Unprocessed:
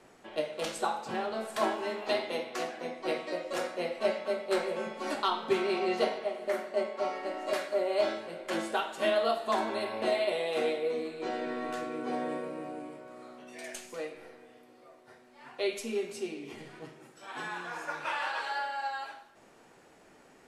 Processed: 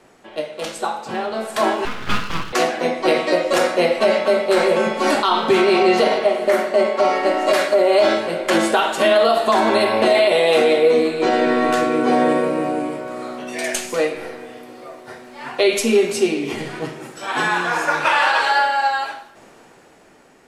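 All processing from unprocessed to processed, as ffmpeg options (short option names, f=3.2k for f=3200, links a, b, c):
-filter_complex "[0:a]asettb=1/sr,asplit=3[a][b][c];[a]atrim=end=1.854[d];[b]atrim=start=1.85:end=2.53,asetpts=PTS-STARTPTS,afade=t=in:d=0.004:c=qsin,afade=t=out:st=0.676:d=0.004:c=qsin,highpass=560,lowpass=2.3k,aeval=exprs='abs(val(0))':c=same[e];[c]atrim=start=2.526[f];[d][e]acrossfade=d=0.004:c1=hsin:c2=qsin[g];[g][f]acrossfade=d=0.004:c1=qsin:c2=hsin,dynaudnorm=f=430:g=9:m=12.5dB,alimiter=level_in=12dB:limit=-1dB:release=50:level=0:latency=1,volume=-5.5dB"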